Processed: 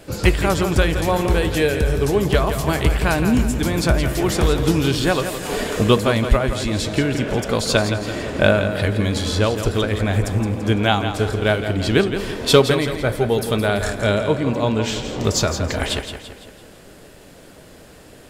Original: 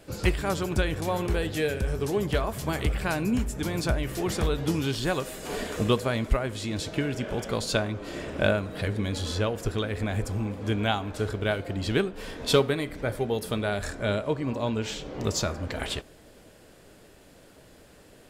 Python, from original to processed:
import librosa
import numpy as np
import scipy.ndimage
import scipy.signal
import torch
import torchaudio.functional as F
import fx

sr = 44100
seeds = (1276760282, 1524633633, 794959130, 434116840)

y = fx.echo_feedback(x, sr, ms=168, feedback_pct=47, wet_db=-9.0)
y = y * librosa.db_to_amplitude(8.5)